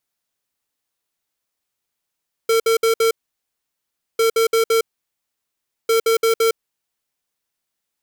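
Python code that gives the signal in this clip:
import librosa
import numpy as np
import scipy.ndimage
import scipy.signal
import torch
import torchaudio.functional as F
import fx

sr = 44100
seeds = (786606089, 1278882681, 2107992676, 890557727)

y = fx.beep_pattern(sr, wave='square', hz=453.0, on_s=0.11, off_s=0.06, beeps=4, pause_s=1.08, groups=3, level_db=-15.5)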